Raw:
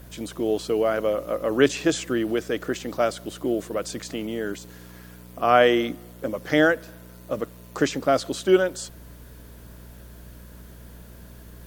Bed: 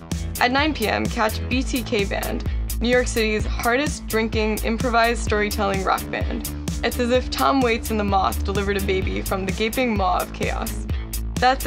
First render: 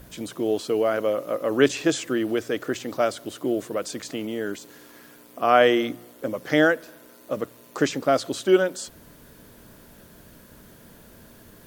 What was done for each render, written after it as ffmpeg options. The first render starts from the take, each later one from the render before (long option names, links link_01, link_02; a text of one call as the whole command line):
ffmpeg -i in.wav -af "bandreject=frequency=60:width_type=h:width=4,bandreject=frequency=120:width_type=h:width=4,bandreject=frequency=180:width_type=h:width=4" out.wav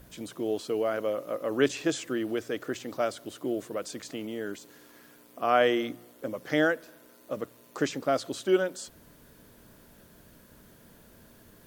ffmpeg -i in.wav -af "volume=-6dB" out.wav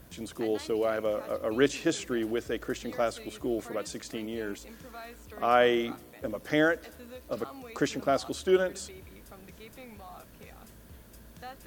ffmpeg -i in.wav -i bed.wav -filter_complex "[1:a]volume=-27dB[link_01];[0:a][link_01]amix=inputs=2:normalize=0" out.wav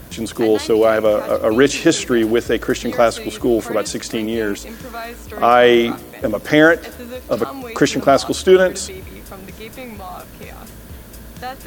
ffmpeg -i in.wav -af "acontrast=35,alimiter=level_in=9.5dB:limit=-1dB:release=50:level=0:latency=1" out.wav